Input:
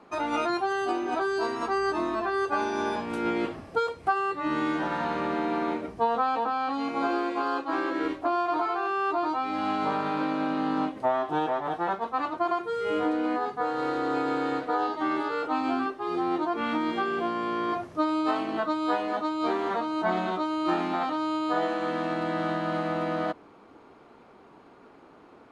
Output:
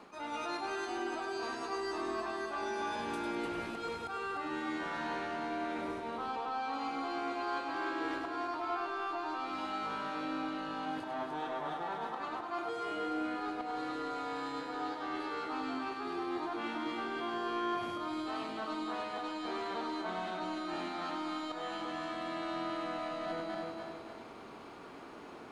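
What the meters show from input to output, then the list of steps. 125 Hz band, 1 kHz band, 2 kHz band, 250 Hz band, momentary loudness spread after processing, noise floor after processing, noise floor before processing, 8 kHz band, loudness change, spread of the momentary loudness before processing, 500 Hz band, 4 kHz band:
−12.0 dB, −9.5 dB, −7.0 dB, −10.0 dB, 3 LU, −49 dBFS, −53 dBFS, can't be measured, −9.5 dB, 2 LU, −10.5 dB, −4.0 dB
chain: feedback delay that plays each chunk backwards 141 ms, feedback 54%, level −10 dB
high-shelf EQ 2,000 Hz +8 dB
volume swells 138 ms
reversed playback
downward compressor 5 to 1, threshold −37 dBFS, peak gain reduction 16 dB
reversed playback
soft clipping −31 dBFS, distortion −20 dB
echo machine with several playback heads 100 ms, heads first and third, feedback 43%, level −6.5 dB

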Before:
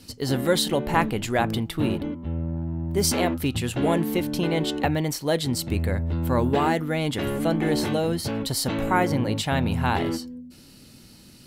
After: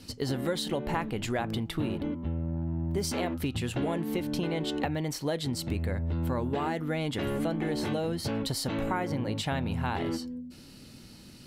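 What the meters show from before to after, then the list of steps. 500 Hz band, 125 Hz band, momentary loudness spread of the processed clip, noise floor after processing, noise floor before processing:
−7.0 dB, −6.0 dB, 3 LU, −50 dBFS, −49 dBFS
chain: downward compressor, threshold −27 dBFS, peak gain reduction 11.5 dB
high-shelf EQ 8,400 Hz −7.5 dB

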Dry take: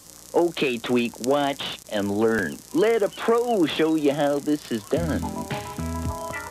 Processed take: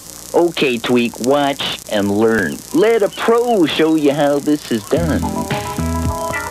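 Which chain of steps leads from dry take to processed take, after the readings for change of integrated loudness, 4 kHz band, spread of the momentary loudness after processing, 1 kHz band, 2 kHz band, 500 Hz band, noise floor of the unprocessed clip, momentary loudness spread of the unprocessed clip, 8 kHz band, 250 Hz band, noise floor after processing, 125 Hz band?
+8.0 dB, +9.5 dB, 6 LU, +8.5 dB, +8.5 dB, +8.0 dB, −46 dBFS, 9 LU, +9.5 dB, +8.0 dB, −34 dBFS, +9.0 dB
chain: in parallel at +0.5 dB: downward compressor, threshold −30 dBFS, peak gain reduction 13.5 dB
on the sum: soft clipping −6.5 dBFS, distortion −29 dB
level +6 dB

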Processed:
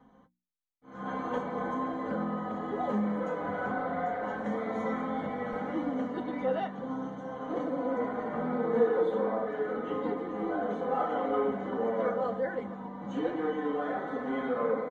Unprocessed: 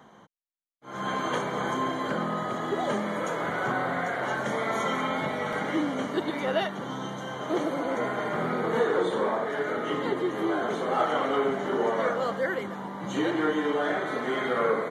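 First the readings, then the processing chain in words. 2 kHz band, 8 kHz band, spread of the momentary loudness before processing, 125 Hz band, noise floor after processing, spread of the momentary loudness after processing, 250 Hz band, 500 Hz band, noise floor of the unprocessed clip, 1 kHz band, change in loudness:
−9.5 dB, below −20 dB, 5 LU, −5.0 dB, −60 dBFS, 6 LU, −2.0 dB, −3.0 dB, −53 dBFS, −4.5 dB, −4.0 dB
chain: flanger 0.14 Hz, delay 7.4 ms, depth 2.7 ms, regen +54%
RIAA equalisation playback
comb filter 4 ms, depth 82%
dynamic equaliser 680 Hz, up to +6 dB, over −39 dBFS, Q 0.76
mains-hum notches 60/120/180/240/300 Hz
downsampling to 22,050 Hz
level −8.5 dB

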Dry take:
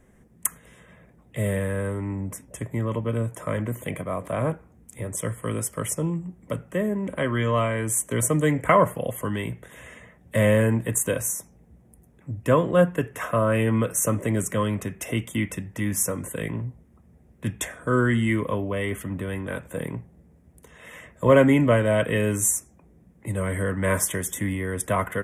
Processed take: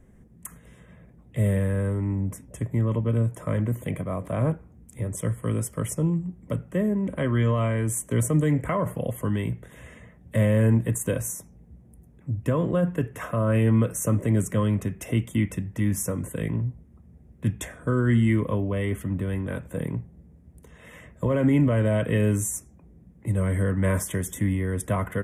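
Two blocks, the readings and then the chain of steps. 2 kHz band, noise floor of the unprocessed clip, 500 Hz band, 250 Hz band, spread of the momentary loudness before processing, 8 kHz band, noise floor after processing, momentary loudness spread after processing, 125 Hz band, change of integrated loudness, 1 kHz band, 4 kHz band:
−6.0 dB, −56 dBFS, −4.5 dB, +0.5 dB, 13 LU, −6.5 dB, −53 dBFS, 11 LU, +3.5 dB, −1.0 dB, −7.0 dB, −6.0 dB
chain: brickwall limiter −14 dBFS, peak gain reduction 10 dB
low-shelf EQ 330 Hz +10.5 dB
level −5 dB

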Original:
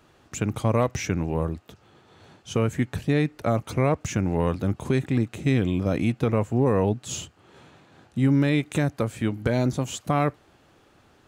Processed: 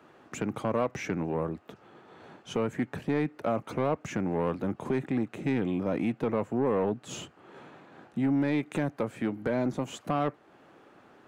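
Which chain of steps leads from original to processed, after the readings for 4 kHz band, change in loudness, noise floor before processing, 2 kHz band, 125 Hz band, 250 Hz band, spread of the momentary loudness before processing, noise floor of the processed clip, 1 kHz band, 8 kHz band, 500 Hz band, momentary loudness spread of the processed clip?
−7.5 dB, −5.5 dB, −59 dBFS, −5.5 dB, −11.5 dB, −4.5 dB, 8 LU, −59 dBFS, −4.0 dB, −11.0 dB, −4.0 dB, 9 LU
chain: three-way crossover with the lows and the highs turned down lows −19 dB, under 160 Hz, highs −12 dB, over 2,400 Hz
in parallel at +1 dB: downward compressor, threshold −38 dBFS, peak gain reduction 18 dB
on the sum: soft clipping −16.5 dBFS, distortion −16 dB
level −3 dB

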